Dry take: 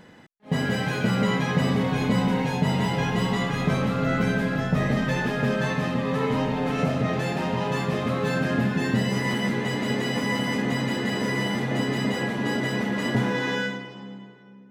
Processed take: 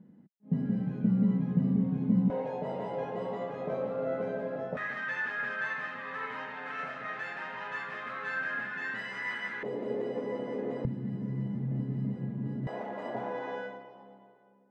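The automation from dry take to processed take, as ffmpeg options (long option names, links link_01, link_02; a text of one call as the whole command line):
ffmpeg -i in.wav -af "asetnsamples=nb_out_samples=441:pad=0,asendcmd='2.3 bandpass f 560;4.77 bandpass f 1600;9.63 bandpass f 460;10.85 bandpass f 150;12.67 bandpass f 690',bandpass=frequency=200:width_type=q:width=3:csg=0" out.wav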